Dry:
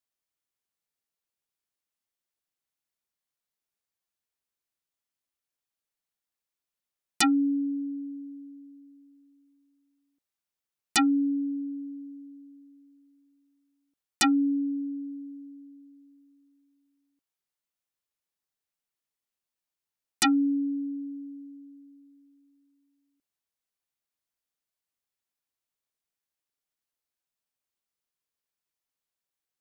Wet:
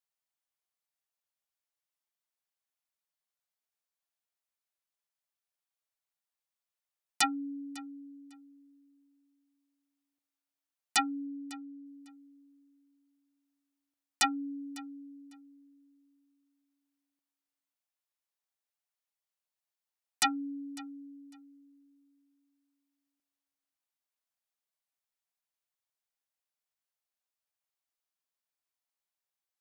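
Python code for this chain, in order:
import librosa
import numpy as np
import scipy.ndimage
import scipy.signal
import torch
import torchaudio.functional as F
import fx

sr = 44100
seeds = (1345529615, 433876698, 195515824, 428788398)

y = fx.lowpass(x, sr, hz=2800.0, slope=6, at=(11.27, 11.86))
y = fx.low_shelf_res(y, sr, hz=480.0, db=-8.0, q=1.5)
y = fx.echo_feedback(y, sr, ms=551, feedback_pct=17, wet_db=-21)
y = F.gain(torch.from_numpy(y), -3.5).numpy()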